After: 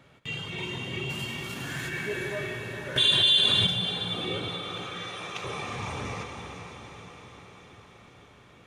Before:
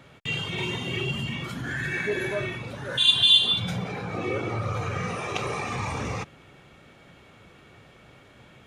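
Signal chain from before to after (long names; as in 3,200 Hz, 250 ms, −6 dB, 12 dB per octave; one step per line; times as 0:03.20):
0:01.09–0:01.88: spectral envelope flattened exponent 0.6
0:04.48–0:05.44: Bessel high-pass filter 910 Hz, order 2
feedback delay with all-pass diffusion 466 ms, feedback 62%, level −9 dB
convolution reverb RT60 3.2 s, pre-delay 120 ms, DRR 6.5 dB
0:02.96–0:03.67: envelope flattener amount 70%
level −5.5 dB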